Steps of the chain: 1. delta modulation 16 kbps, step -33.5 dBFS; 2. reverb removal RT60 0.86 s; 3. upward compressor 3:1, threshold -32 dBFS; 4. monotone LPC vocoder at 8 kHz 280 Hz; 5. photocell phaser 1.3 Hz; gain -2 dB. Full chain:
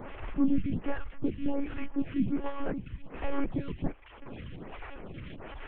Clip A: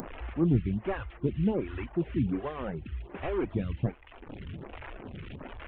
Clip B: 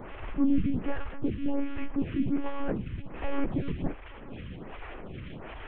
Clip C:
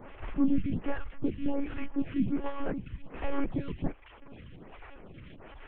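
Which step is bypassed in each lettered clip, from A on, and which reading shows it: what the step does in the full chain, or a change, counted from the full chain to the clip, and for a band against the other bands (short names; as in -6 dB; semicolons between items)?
4, 125 Hz band +7.0 dB; 2, loudness change +1.5 LU; 3, momentary loudness spread change +6 LU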